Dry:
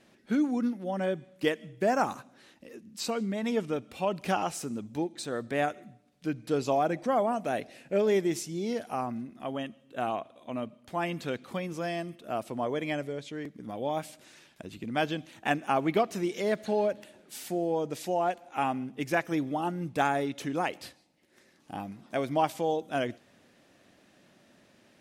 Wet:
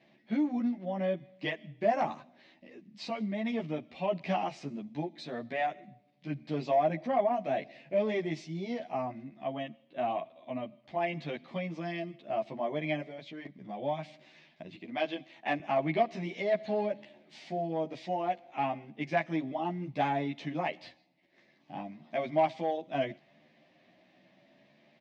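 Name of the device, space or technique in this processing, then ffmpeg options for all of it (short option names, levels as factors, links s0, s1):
barber-pole flanger into a guitar amplifier: -filter_complex "[0:a]asplit=2[s0][s1];[s1]adelay=11.7,afreqshift=0.65[s2];[s0][s2]amix=inputs=2:normalize=1,asoftclip=type=tanh:threshold=0.106,highpass=94,equalizer=f=99:t=q:w=4:g=-10,equalizer=f=150:t=q:w=4:g=5,equalizer=f=460:t=q:w=4:g=-7,equalizer=f=650:t=q:w=4:g=7,equalizer=f=1400:t=q:w=4:g=-10,equalizer=f=2100:t=q:w=4:g=6,lowpass=f=4500:w=0.5412,lowpass=f=4500:w=1.3066,asettb=1/sr,asplit=3[s3][s4][s5];[s3]atrim=end=14.764[s6];[s4]atrim=start=14.76:end=15.6,asetpts=PTS-STARTPTS,afade=t=in:d=0.004:c=qsin,afade=t=out:st=0.836:d=0.004:c=qsin,highpass=250[s7];[s5]atrim=start=15.596[s8];[s6][s7]acrossfade=d=0.004:c1=hsin:c2=qsin[s9];[s9][s8]acrossfade=d=0.004:c1=qsin:c2=hsin"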